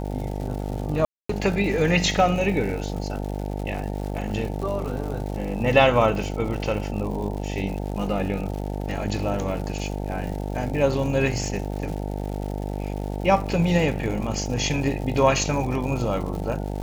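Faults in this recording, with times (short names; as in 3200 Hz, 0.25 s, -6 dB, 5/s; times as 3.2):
buzz 50 Hz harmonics 18 -29 dBFS
crackle 180/s -32 dBFS
1.05–1.29 gap 0.244 s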